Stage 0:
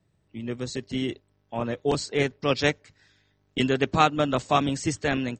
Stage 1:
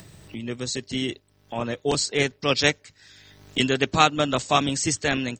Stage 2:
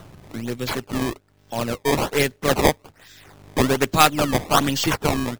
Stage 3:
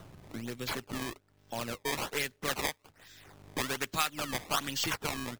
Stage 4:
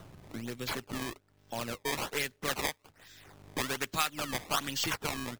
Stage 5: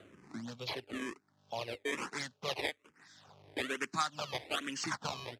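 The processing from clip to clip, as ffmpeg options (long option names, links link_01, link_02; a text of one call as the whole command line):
ffmpeg -i in.wav -af "highshelf=frequency=2800:gain=11,acompressor=mode=upward:threshold=-30dB:ratio=2.5" out.wav
ffmpeg -i in.wav -af "aeval=exprs='if(lt(val(0),0),0.708*val(0),val(0))':channel_layout=same,acrusher=samples=18:mix=1:aa=0.000001:lfo=1:lforange=28.8:lforate=1.2,volume=4.5dB" out.wav
ffmpeg -i in.wav -filter_complex "[0:a]acrossover=split=1100[link_01][link_02];[link_01]acompressor=threshold=-28dB:ratio=6[link_03];[link_03][link_02]amix=inputs=2:normalize=0,alimiter=limit=-7dB:level=0:latency=1:release=286,volume=-7.5dB" out.wav
ffmpeg -i in.wav -af anull out.wav
ffmpeg -i in.wav -filter_complex "[0:a]highpass=140,lowpass=6100,asplit=2[link_01][link_02];[link_02]afreqshift=-1.1[link_03];[link_01][link_03]amix=inputs=2:normalize=1" out.wav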